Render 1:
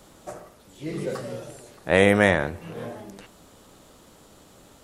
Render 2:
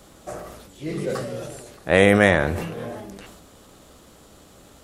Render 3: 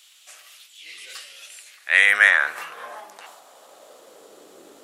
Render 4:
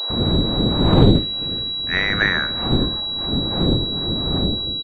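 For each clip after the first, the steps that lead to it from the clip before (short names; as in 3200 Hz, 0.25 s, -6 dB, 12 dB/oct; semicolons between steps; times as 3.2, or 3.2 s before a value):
bell 63 Hz +7 dB 0.35 oct; notch 920 Hz, Q 16; sustainer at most 40 dB/s; gain +2 dB
high-pass sweep 2800 Hz -> 360 Hz, 1.36–4.59
wind noise 320 Hz -20 dBFS; bands offset in time highs, lows 0.1 s, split 600 Hz; pulse-width modulation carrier 3900 Hz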